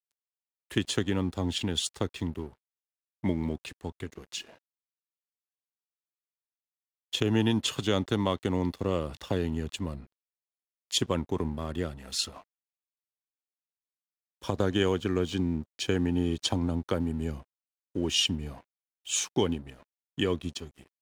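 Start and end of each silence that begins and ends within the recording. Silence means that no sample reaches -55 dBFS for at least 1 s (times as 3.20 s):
4.58–7.13 s
12.44–14.42 s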